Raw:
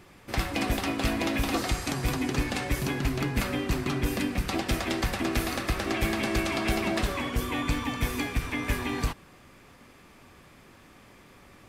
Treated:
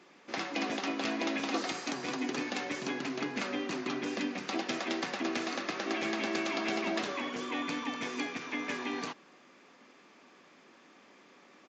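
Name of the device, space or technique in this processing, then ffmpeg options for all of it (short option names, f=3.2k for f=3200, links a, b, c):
Bluetooth headset: -af "highpass=f=220:w=0.5412,highpass=f=220:w=1.3066,aresample=16000,aresample=44100,volume=-4dB" -ar 16000 -c:a sbc -b:a 64k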